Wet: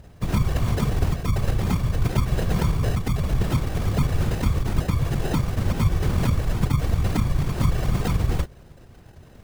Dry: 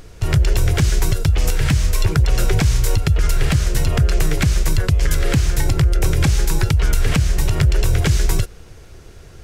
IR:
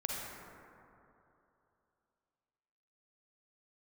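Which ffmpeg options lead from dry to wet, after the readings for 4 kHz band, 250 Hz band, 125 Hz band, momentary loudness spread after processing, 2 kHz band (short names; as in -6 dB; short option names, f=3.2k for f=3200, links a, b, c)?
-10.0 dB, -1.5 dB, -5.0 dB, 2 LU, -9.0 dB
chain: -af "acrusher=samples=39:mix=1:aa=0.000001,afftfilt=real='hypot(re,im)*cos(2*PI*random(0))':imag='hypot(re,im)*sin(2*PI*random(1))':win_size=512:overlap=0.75"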